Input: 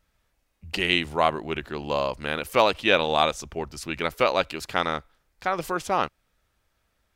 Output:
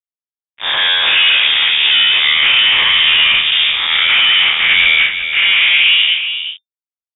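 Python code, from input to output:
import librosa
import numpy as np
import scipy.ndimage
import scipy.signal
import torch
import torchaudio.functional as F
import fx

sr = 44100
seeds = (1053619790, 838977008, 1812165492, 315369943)

p1 = fx.spec_blur(x, sr, span_ms=205.0)
p2 = fx.peak_eq(p1, sr, hz=340.0, db=-4.0, octaves=0.38)
p3 = fx.fuzz(p2, sr, gain_db=46.0, gate_db=-45.0)
p4 = fx.filter_sweep_lowpass(p3, sr, from_hz=1500.0, to_hz=100.0, start_s=5.71, end_s=6.97, q=2.0)
p5 = p4 + fx.echo_single(p4, sr, ms=370, db=-8.5, dry=0)
p6 = fx.freq_invert(p5, sr, carrier_hz=3600)
y = F.gain(torch.from_numpy(p6), 2.0).numpy()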